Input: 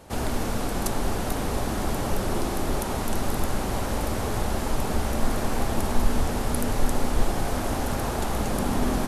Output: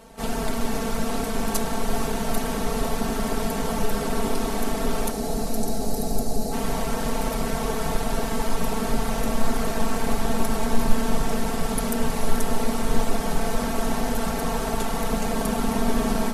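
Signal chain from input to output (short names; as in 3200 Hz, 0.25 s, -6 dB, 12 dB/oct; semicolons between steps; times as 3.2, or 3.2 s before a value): spectral gain 2.84–3.63, 840–3800 Hz -19 dB; granular stretch 1.8×, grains 20 ms; diffused feedback echo 0.468 s, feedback 63%, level -10 dB; gain +2.5 dB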